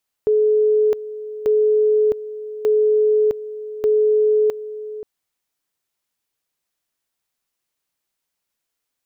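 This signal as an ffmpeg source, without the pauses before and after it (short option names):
-f lavfi -i "aevalsrc='pow(10,(-12.5-15*gte(mod(t,1.19),0.66))/20)*sin(2*PI*427*t)':d=4.76:s=44100"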